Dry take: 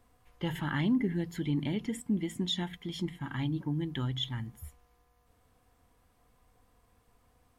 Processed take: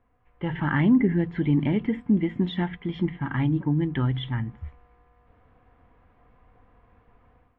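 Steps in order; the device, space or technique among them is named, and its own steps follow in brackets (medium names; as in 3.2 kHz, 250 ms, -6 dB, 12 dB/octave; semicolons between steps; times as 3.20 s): action camera in a waterproof case (low-pass 2.4 kHz 24 dB/octave; level rider gain up to 11 dB; trim -2 dB; AAC 48 kbps 22.05 kHz)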